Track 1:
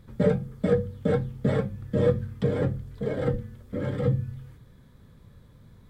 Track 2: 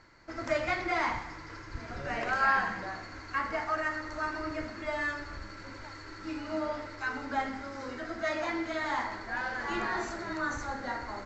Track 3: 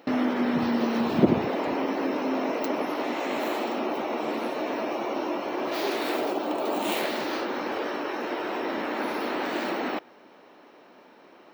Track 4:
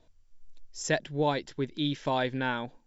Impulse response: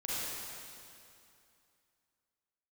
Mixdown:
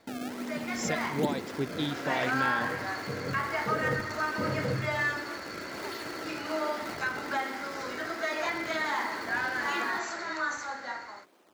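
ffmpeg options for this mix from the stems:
-filter_complex "[0:a]agate=range=-33dB:threshold=-43dB:ratio=3:detection=peak,adelay=650,volume=-2dB[link_01];[1:a]highpass=frequency=990:poles=1,dynaudnorm=framelen=650:gausssize=5:maxgain=13dB,alimiter=limit=-15.5dB:level=0:latency=1:release=215,volume=-5.5dB[link_02];[2:a]equalizer=frequency=4700:width=1.8:gain=9,acrossover=split=490|3000[link_03][link_04][link_05];[link_04]acompressor=threshold=-36dB:ratio=6[link_06];[link_03][link_06][link_05]amix=inputs=3:normalize=0,acrusher=samples=26:mix=1:aa=0.000001:lfo=1:lforange=41.6:lforate=1.3,volume=-11dB[link_07];[3:a]volume=0.5dB,asplit=2[link_08][link_09];[link_09]apad=whole_len=288436[link_10];[link_01][link_10]sidechaincompress=threshold=-41dB:ratio=8:attack=16:release=1260[link_11];[link_11][link_08]amix=inputs=2:normalize=0,alimiter=limit=-21.5dB:level=0:latency=1:release=350,volume=0dB[link_12];[link_02][link_07][link_12]amix=inputs=3:normalize=0,highpass=85"

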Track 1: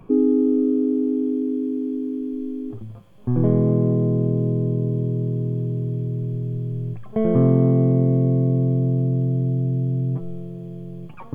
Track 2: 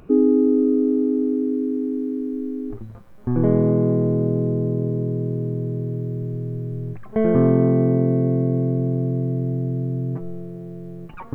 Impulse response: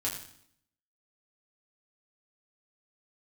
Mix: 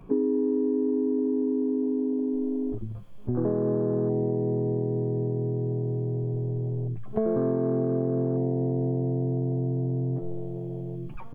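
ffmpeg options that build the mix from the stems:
-filter_complex "[0:a]acompressor=threshold=-34dB:ratio=2.5,asoftclip=type=tanh:threshold=-26dB,volume=-3.5dB[link_01];[1:a]afwtdn=0.0355,lowshelf=frequency=450:gain=6,acrossover=split=280|3000[link_02][link_03][link_04];[link_02]acompressor=threshold=-30dB:ratio=3[link_05];[link_05][link_03][link_04]amix=inputs=3:normalize=0,adelay=13,volume=-3dB[link_06];[link_01][link_06]amix=inputs=2:normalize=0,acompressor=threshold=-22dB:ratio=5"

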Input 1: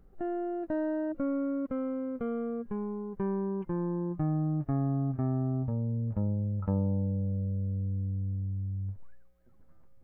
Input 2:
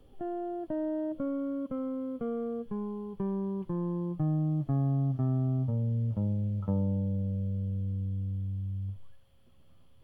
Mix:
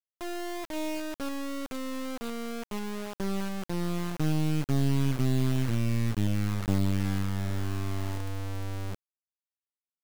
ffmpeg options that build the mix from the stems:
ffmpeg -i stem1.wav -i stem2.wav -filter_complex "[0:a]highpass=frequency=160:poles=1,volume=-6dB[link_01];[1:a]adynamicequalizer=threshold=0.00447:dfrequency=430:dqfactor=2:tfrequency=430:tqfactor=2:attack=5:release=100:ratio=0.375:range=2:mode=cutabove:tftype=bell,volume=2.5dB[link_02];[link_01][link_02]amix=inputs=2:normalize=0,lowshelf=frequency=380:gain=2,acrusher=bits=3:dc=4:mix=0:aa=0.000001" out.wav

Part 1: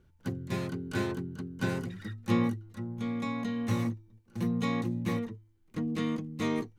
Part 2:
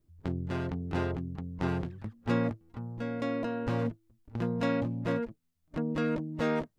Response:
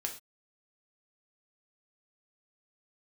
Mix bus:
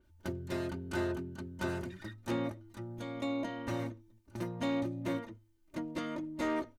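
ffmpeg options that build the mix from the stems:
-filter_complex "[0:a]bass=frequency=250:gain=-3,treble=frequency=4000:gain=3,acompressor=threshold=-34dB:ratio=6,volume=-4dB[link_01];[1:a]highpass=63,volume=-8.5dB,asplit=2[link_02][link_03];[link_03]volume=-10dB[link_04];[2:a]atrim=start_sample=2205[link_05];[link_04][link_05]afir=irnorm=-1:irlink=0[link_06];[link_01][link_02][link_06]amix=inputs=3:normalize=0,aecho=1:1:3.3:0.77,volume=26.5dB,asoftclip=hard,volume=-26.5dB,adynamicequalizer=threshold=0.001:dfrequency=4700:dqfactor=0.7:tfrequency=4700:tqfactor=0.7:attack=5:release=100:ratio=0.375:range=2.5:mode=cutabove:tftype=highshelf"

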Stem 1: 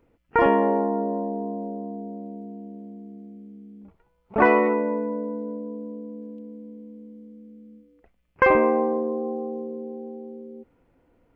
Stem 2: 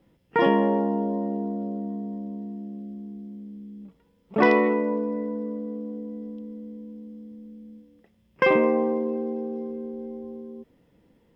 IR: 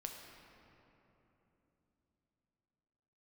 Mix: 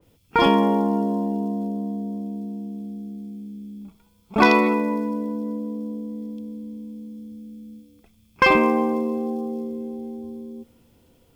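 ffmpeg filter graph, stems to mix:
-filter_complex "[0:a]volume=1dB[link_01];[1:a]equalizer=frequency=91:width_type=o:width=1.1:gain=15,volume=-6.5dB,asplit=2[link_02][link_03];[link_03]volume=-13dB[link_04];[2:a]atrim=start_sample=2205[link_05];[link_04][link_05]afir=irnorm=-1:irlink=0[link_06];[link_01][link_02][link_06]amix=inputs=3:normalize=0,aexciter=amount=4.6:drive=6:freq=2800,adynamicequalizer=threshold=0.0158:dfrequency=2500:dqfactor=0.7:tfrequency=2500:tqfactor=0.7:attack=5:release=100:ratio=0.375:range=2:mode=boostabove:tftype=highshelf"

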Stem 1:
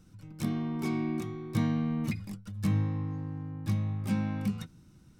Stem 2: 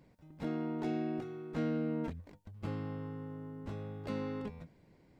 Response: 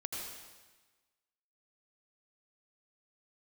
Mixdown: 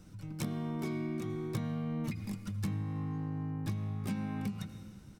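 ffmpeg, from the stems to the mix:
-filter_complex "[0:a]acrossover=split=420[link_01][link_02];[link_02]acompressor=threshold=-37dB:ratio=6[link_03];[link_01][link_03]amix=inputs=2:normalize=0,volume=2dB,asplit=2[link_04][link_05];[link_05]volume=-12dB[link_06];[1:a]adelay=0.3,volume=-3dB[link_07];[2:a]atrim=start_sample=2205[link_08];[link_06][link_08]afir=irnorm=-1:irlink=0[link_09];[link_04][link_07][link_09]amix=inputs=3:normalize=0,acompressor=threshold=-33dB:ratio=6"

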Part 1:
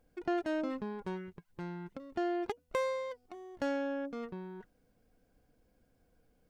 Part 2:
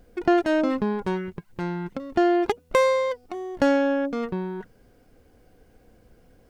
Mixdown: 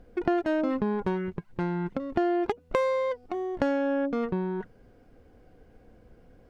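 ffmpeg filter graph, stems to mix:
ffmpeg -i stem1.wav -i stem2.wav -filter_complex "[0:a]volume=-3.5dB[link_01];[1:a]acompressor=threshold=-26dB:ratio=6,aemphasis=mode=reproduction:type=75fm,volume=0dB[link_02];[link_01][link_02]amix=inputs=2:normalize=0" out.wav

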